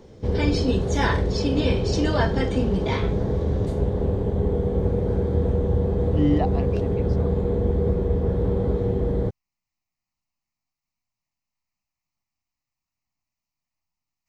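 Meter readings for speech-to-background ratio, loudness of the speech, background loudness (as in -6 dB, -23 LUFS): -1.5 dB, -25.0 LUFS, -23.5 LUFS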